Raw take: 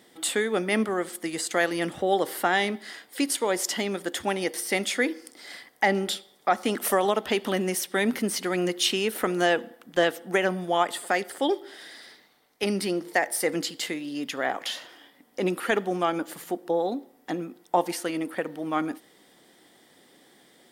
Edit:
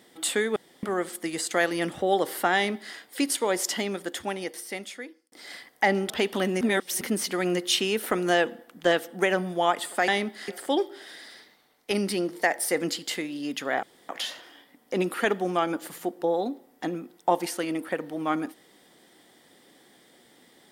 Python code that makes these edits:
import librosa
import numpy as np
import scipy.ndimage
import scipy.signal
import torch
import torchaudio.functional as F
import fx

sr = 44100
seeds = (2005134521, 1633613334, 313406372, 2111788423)

y = fx.edit(x, sr, fx.room_tone_fill(start_s=0.56, length_s=0.27),
    fx.duplicate(start_s=2.55, length_s=0.4, to_s=11.2),
    fx.fade_out_span(start_s=3.68, length_s=1.64),
    fx.cut(start_s=6.1, length_s=1.12),
    fx.reverse_span(start_s=7.73, length_s=0.4),
    fx.insert_room_tone(at_s=14.55, length_s=0.26), tone=tone)